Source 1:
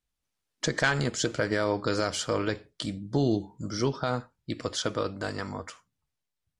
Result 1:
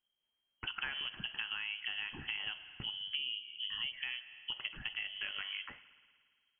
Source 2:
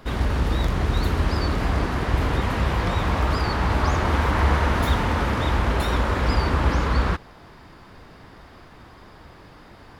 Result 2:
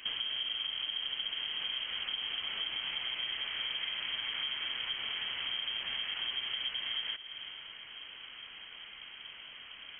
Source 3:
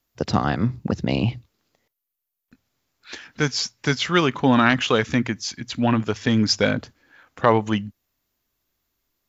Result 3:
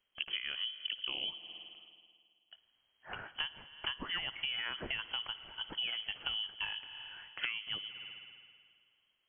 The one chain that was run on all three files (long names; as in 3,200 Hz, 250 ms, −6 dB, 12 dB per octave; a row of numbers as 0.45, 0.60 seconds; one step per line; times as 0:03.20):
spring reverb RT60 1.9 s, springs 54 ms, chirp 30 ms, DRR 17 dB
downward compressor 8 to 1, threshold −32 dBFS
voice inversion scrambler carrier 3,200 Hz
level −3.5 dB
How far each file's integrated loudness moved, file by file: −9.0, −11.5, −16.5 LU